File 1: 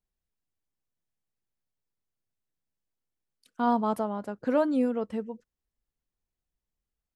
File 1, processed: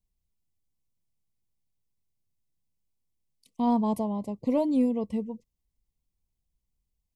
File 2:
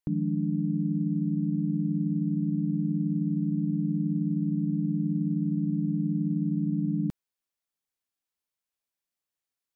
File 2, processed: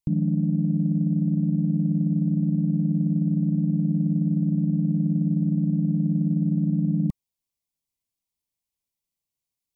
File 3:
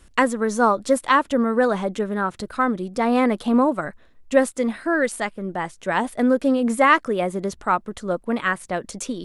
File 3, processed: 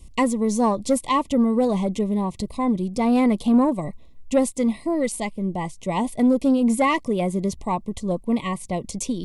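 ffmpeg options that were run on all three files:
ffmpeg -i in.wav -af "asuperstop=centerf=1500:order=20:qfactor=2,bass=frequency=250:gain=11,treble=frequency=4000:gain=5,acontrast=38,volume=-8dB" out.wav

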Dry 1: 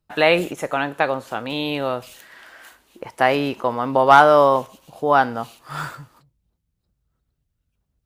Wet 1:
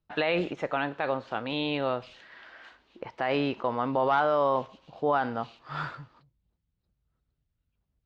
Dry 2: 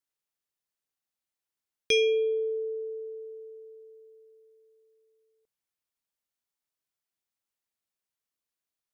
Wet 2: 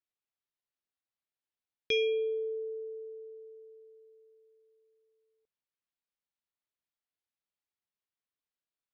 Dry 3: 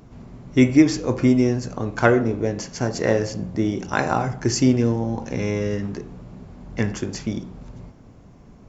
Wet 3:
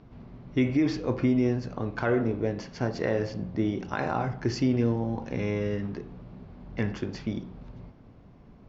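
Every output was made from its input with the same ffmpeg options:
ffmpeg -i in.wav -af "alimiter=limit=-10.5dB:level=0:latency=1:release=42,lowpass=frequency=4500:width=0.5412,lowpass=frequency=4500:width=1.3066,volume=-5dB" out.wav

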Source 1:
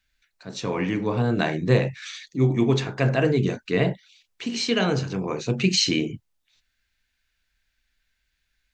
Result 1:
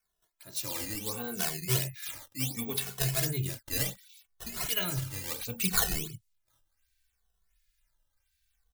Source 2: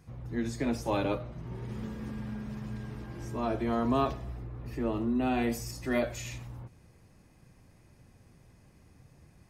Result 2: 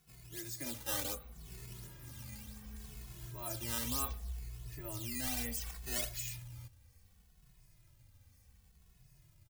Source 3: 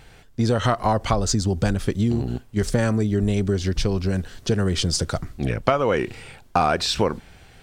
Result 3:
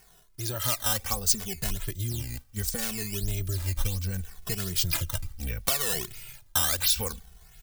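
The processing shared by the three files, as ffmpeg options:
ffmpeg -i in.wav -filter_complex "[0:a]acrusher=samples=11:mix=1:aa=0.000001:lfo=1:lforange=17.6:lforate=1.4,asubboost=boost=6:cutoff=110,crystalizer=i=7:c=0,asplit=2[link_01][link_02];[link_02]adelay=2.3,afreqshift=-0.68[link_03];[link_01][link_03]amix=inputs=2:normalize=1,volume=-12.5dB" out.wav

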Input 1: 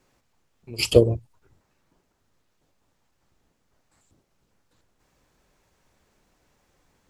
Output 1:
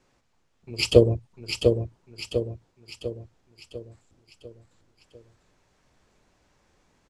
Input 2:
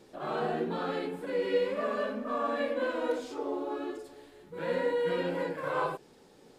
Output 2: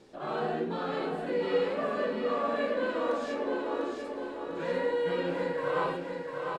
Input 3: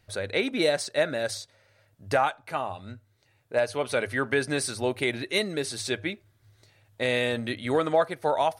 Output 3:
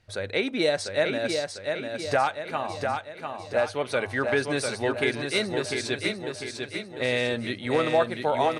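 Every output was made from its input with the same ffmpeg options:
ffmpeg -i in.wav -af "lowpass=8000,aecho=1:1:698|1396|2094|2792|3490|4188:0.562|0.276|0.135|0.0662|0.0324|0.0159" out.wav

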